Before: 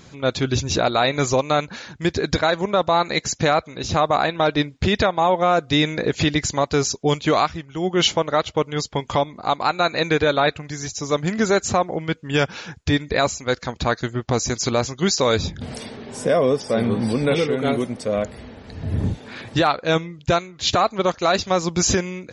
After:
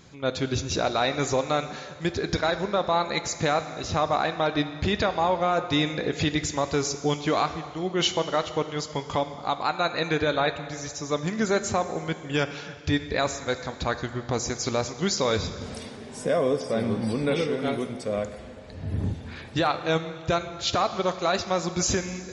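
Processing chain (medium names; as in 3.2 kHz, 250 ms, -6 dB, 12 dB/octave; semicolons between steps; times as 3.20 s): plate-style reverb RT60 2.1 s, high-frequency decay 1×, DRR 9.5 dB; trim -6 dB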